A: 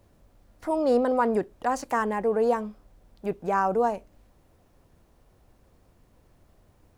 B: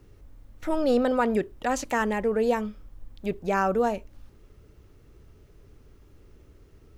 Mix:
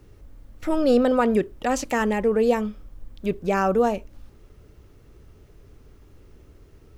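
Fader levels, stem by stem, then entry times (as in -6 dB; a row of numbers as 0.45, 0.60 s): -6.5, +3.0 dB; 0.00, 0.00 s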